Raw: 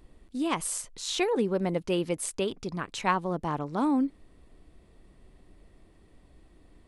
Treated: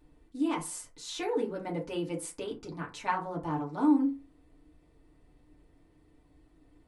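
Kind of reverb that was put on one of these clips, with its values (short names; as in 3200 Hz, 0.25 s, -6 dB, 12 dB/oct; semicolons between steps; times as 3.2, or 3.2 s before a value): FDN reverb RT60 0.3 s, low-frequency decay 1.05×, high-frequency decay 0.5×, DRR -3 dB; gain -10 dB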